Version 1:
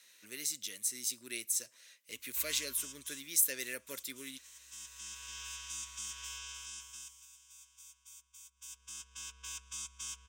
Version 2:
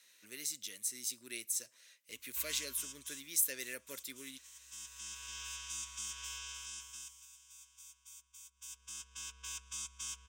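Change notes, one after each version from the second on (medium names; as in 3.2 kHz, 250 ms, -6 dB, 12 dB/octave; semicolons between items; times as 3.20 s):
speech -3.0 dB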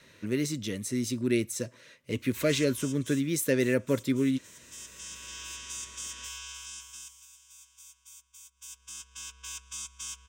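speech: remove differentiator; background +3.5 dB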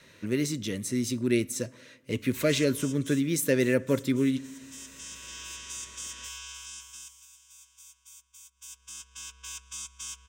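reverb: on, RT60 1.3 s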